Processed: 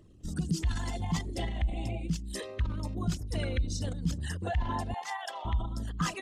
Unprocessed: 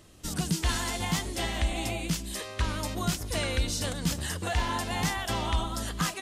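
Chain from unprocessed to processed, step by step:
spectral envelope exaggerated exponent 2
0:04.94–0:05.45: high-pass filter 610 Hz 24 dB per octave
level −1.5 dB

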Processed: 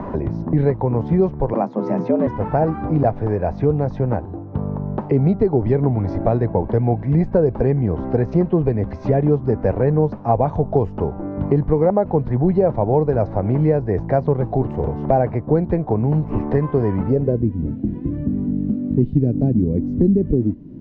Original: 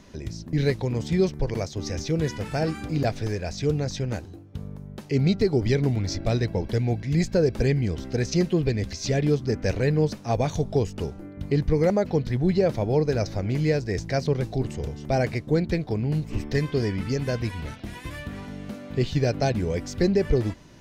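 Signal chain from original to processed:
low-pass filter sweep 930 Hz → 270 Hz, 0:16.97–0:17.48
0:01.53–0:02.27: frequency shifter +110 Hz
multiband upward and downward compressor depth 70%
level +4.5 dB

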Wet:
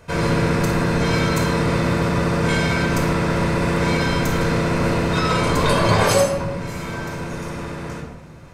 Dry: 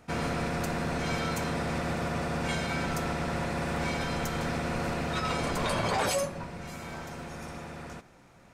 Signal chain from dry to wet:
rectangular room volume 3,100 cubic metres, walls furnished, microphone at 5.1 metres
level +6 dB

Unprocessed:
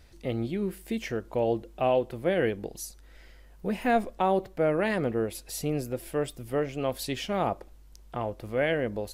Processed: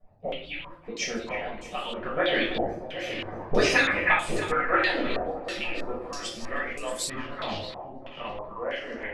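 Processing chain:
harmonic-percussive split with one part muted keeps percussive
source passing by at 0:03.46, 12 m/s, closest 4.1 metres
tilt shelving filter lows −7.5 dB, about 790 Hz
in parallel at 0 dB: downward compressor, threshold −50 dBFS, peak gain reduction 19.5 dB
on the sum: low-shelf EQ 350 Hz +11.5 dB
on a send: echo with a time of its own for lows and highs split 880 Hz, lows 767 ms, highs 314 ms, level −9 dB
on the sum: rectangular room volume 530 cubic metres, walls furnished, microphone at 6 metres
low-pass on a step sequencer 3.1 Hz 740–8,000 Hz
level +3 dB

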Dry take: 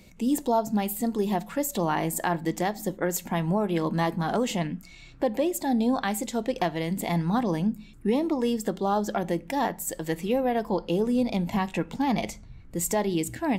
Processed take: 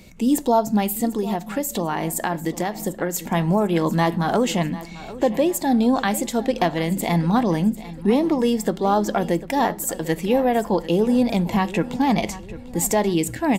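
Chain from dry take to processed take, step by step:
0:01.05–0:03.19: downward compressor, threshold −26 dBFS, peak gain reduction 5.5 dB
repeating echo 746 ms, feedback 42%, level −16.5 dB
level +6 dB

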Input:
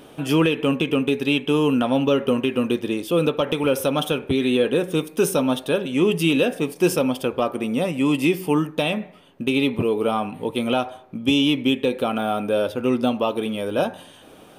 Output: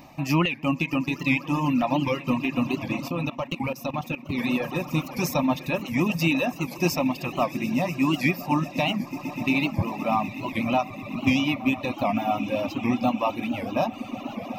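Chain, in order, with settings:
echo that builds up and dies away 124 ms, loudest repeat 8, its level −17 dB
reverb reduction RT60 1.3 s
phaser with its sweep stopped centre 2,200 Hz, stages 8
0:03.08–0:04.39: output level in coarse steps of 15 dB
wow of a warped record 78 rpm, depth 160 cents
level +3 dB

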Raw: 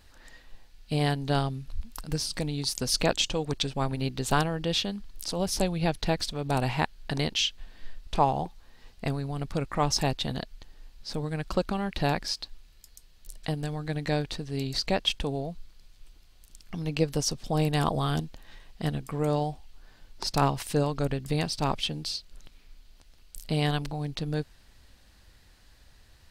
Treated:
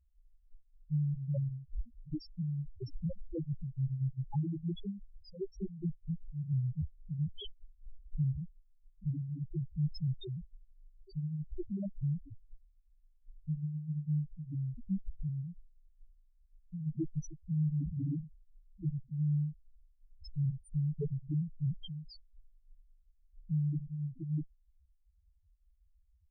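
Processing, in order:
0:05.29–0:06.18: output level in coarse steps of 13 dB
harmonic generator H 4 −13 dB, 5 −41 dB, 6 −23 dB, 8 −7 dB, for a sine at −9.5 dBFS
spectral peaks only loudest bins 1
level −4 dB

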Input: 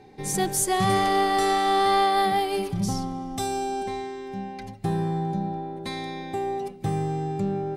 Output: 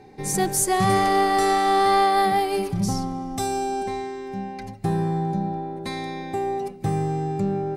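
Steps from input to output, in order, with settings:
parametric band 3,300 Hz −5.5 dB 0.41 octaves
level +2.5 dB

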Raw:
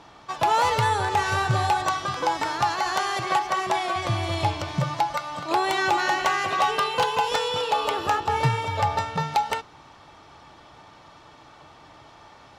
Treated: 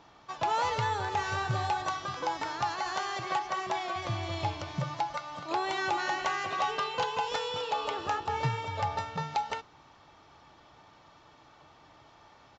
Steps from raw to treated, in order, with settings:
downsampling to 16,000 Hz
level −8 dB

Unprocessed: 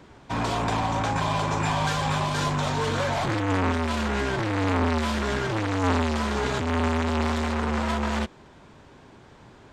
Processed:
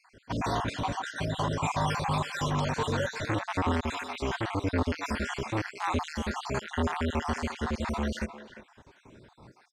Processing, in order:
time-frequency cells dropped at random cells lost 54%
far-end echo of a speakerphone 350 ms, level −11 dB
level −2 dB

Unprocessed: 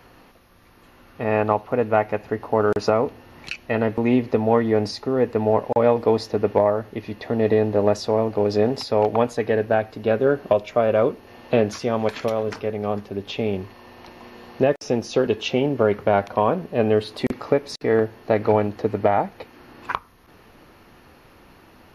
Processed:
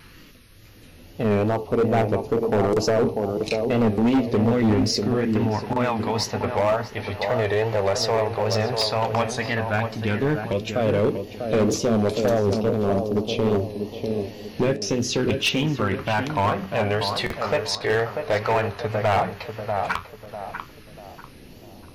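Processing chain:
in parallel at 0 dB: brickwall limiter −13.5 dBFS, peak gain reduction 9 dB
on the sum: all-pass phaser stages 2, 0.098 Hz, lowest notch 250–1,700 Hz
mains-hum notches 60/120/180/240/300/360/420 Hz
flanger 0.38 Hz, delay 5.3 ms, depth 8.5 ms, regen +70%
tape wow and flutter 110 cents
on a send: tape delay 643 ms, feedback 42%, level −5.5 dB, low-pass 1,200 Hz
on the sum: hard clipping −21 dBFS, distortion −11 dB
level +5.5 dB

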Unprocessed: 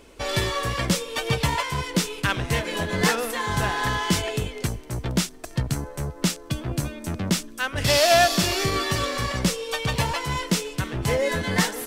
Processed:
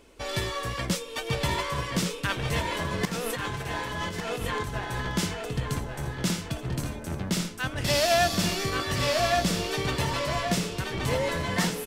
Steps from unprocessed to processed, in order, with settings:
feedback echo with a low-pass in the loop 1,127 ms, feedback 33%, low-pass 4,200 Hz, level −3 dB
0:03.05–0:04.76: compressor whose output falls as the input rises −28 dBFS, ratio −1
single-tap delay 1,150 ms −8.5 dB
level −5.5 dB

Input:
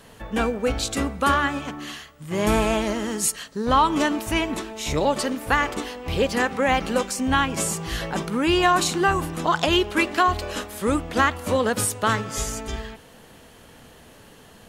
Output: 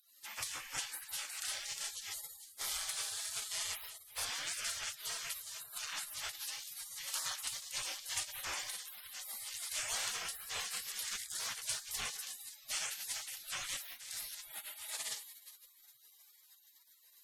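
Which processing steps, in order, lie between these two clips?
tape wow and flutter 75 cents
in parallel at −12 dB: hard clipping −20 dBFS, distortion −9 dB
on the sum: high-shelf EQ 3,500 Hz +7 dB
mains-hum notches 60/120/180/240 Hz
downward compressor 6 to 1, threshold −28 dBFS, peak gain reduction 15.5 dB
notch filter 4,500 Hz, Q 16
on a send: delay that swaps between a low-pass and a high-pass 153 ms, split 1,700 Hz, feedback 66%, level −7 dB
on the sum: gate on every frequency bin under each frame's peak −30 dB weak
change of speed 0.852×
parametric band 330 Hz −7.5 dB 1.2 octaves
level +8 dB

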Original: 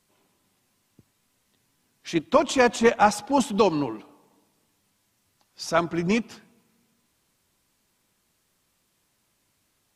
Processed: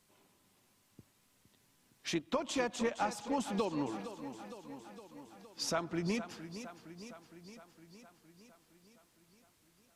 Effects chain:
downward compressor 4 to 1, threshold −32 dBFS, peak gain reduction 16 dB
feedback echo with a swinging delay time 462 ms, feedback 65%, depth 70 cents, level −12 dB
level −1.5 dB

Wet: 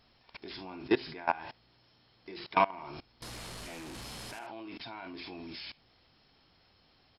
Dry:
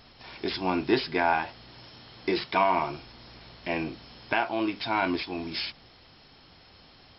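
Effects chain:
0:03.22–0:04.39: linear delta modulator 64 kbit/s, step −21 dBFS
ambience of single reflections 52 ms −14 dB, 75 ms −17 dB
output level in coarse steps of 22 dB

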